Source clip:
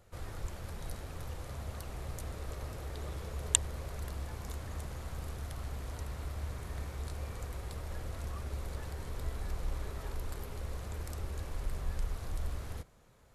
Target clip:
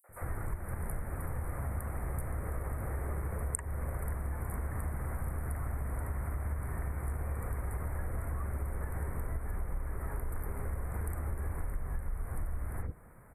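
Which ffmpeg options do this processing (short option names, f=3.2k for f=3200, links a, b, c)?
-filter_complex "[0:a]asuperstop=centerf=4400:order=12:qfactor=0.69,acrossover=split=500|5800[a][b][c];[b]adelay=40[d];[a]adelay=90[e];[e][d][c]amix=inputs=3:normalize=0,acompressor=threshold=-40dB:ratio=6,volume=8.5dB"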